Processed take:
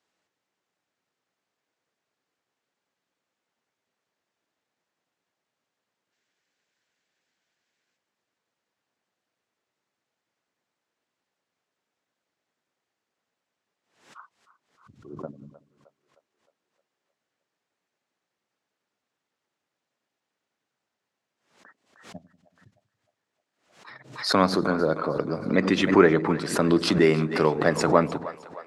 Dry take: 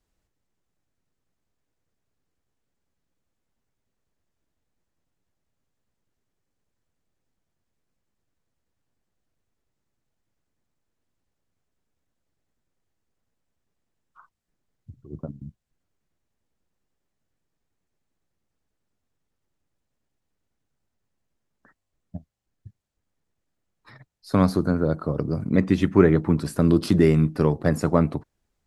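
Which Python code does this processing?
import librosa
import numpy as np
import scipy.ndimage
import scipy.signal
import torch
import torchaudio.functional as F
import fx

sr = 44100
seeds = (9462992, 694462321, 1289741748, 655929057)

p1 = fx.weighting(x, sr, curve='A')
p2 = fx.spec_box(p1, sr, start_s=6.12, length_s=1.85, low_hz=1400.0, high_hz=8000.0, gain_db=6)
p3 = scipy.signal.sosfilt(scipy.signal.butter(2, 71.0, 'highpass', fs=sr, output='sos'), p2)
p4 = fx.air_absorb(p3, sr, metres=52.0)
p5 = p4 + fx.echo_split(p4, sr, split_hz=470.0, low_ms=94, high_ms=309, feedback_pct=52, wet_db=-15.0, dry=0)
p6 = fx.pre_swell(p5, sr, db_per_s=110.0)
y = p6 * librosa.db_to_amplitude(5.0)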